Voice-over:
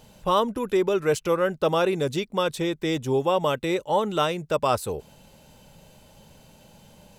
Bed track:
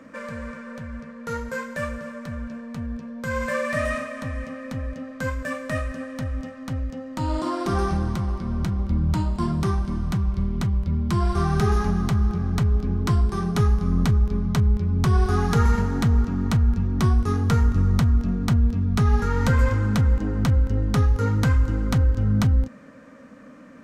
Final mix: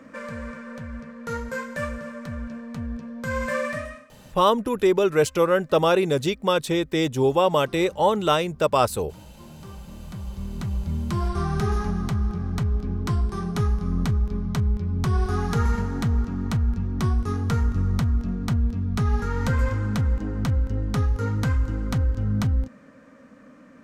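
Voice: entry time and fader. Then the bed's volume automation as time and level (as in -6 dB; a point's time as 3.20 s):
4.10 s, +3.0 dB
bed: 3.66 s -0.5 dB
4.13 s -23.5 dB
9.30 s -23.5 dB
10.80 s -3.5 dB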